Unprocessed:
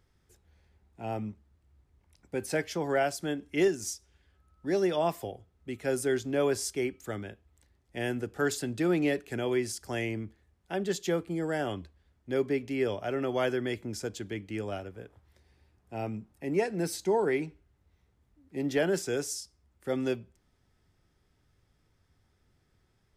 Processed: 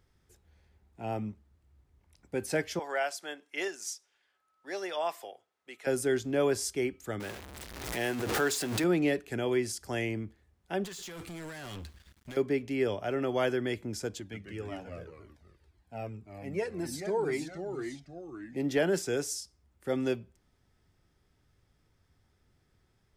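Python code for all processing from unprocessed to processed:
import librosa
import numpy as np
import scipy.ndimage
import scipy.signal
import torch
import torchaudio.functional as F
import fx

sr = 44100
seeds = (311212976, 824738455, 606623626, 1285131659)

y = fx.chain(x, sr, fx.highpass(hz=730.0, slope=12),
    fx.high_shelf(hz=9100.0, db=-6.0), at=(2.79, 5.87))
y = fx.chain(y, sr, fx.zero_step(step_db=-35.0),
    fx.low_shelf(hz=210.0, db=-11.0),
    fx.pre_swell(db_per_s=48.0), at=(7.2, 8.84))
y = fx.chain(y, sr, fx.tone_stack(knobs='5-5-5'),
    fx.over_compress(threshold_db=-54.0, ratio=-1.0),
    fx.leveller(passes=5), at=(10.84, 12.37))
y = fx.chain(y, sr, fx.echo_pitch(ms=133, semitones=-2, count=2, db_per_echo=-6.0),
    fx.comb_cascade(direction='falling', hz=1.9), at=(14.2, 18.56))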